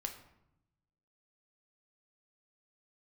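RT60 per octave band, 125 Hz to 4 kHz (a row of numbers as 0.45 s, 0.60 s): 1.4 s, 1.2 s, 0.85 s, 0.80 s, 0.65 s, 0.50 s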